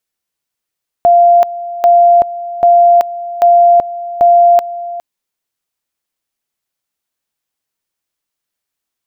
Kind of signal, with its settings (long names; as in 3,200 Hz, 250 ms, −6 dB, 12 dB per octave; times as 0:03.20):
tone at two levels in turn 694 Hz −3.5 dBFS, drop 16 dB, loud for 0.38 s, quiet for 0.41 s, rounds 5